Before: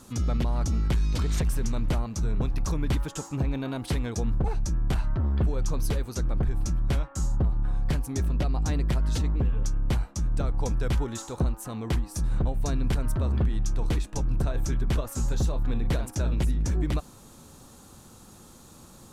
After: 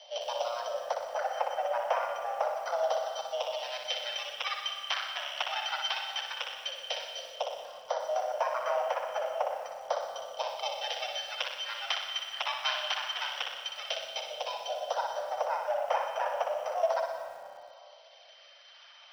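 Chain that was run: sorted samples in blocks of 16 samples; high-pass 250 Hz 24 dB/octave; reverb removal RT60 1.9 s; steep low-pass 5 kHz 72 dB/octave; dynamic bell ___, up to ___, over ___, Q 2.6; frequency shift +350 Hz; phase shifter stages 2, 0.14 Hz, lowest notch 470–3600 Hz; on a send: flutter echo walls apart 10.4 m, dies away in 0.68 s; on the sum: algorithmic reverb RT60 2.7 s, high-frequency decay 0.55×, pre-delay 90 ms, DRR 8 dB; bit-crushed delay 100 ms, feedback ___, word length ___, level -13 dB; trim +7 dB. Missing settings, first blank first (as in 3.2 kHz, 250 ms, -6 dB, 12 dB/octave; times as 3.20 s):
1.1 kHz, +5 dB, -55 dBFS, 35%, 9-bit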